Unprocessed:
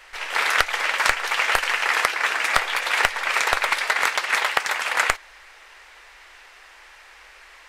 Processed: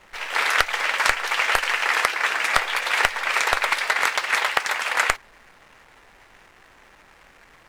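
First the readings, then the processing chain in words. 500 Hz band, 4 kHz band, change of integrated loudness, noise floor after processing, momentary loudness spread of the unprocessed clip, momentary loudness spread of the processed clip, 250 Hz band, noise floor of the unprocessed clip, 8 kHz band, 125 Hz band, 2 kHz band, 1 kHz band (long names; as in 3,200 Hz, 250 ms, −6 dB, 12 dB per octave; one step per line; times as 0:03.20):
0.0 dB, 0.0 dB, 0.0 dB, −53 dBFS, 3 LU, 3 LU, 0.0 dB, −48 dBFS, −0.5 dB, can't be measured, 0.0 dB, 0.0 dB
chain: slack as between gear wheels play −41 dBFS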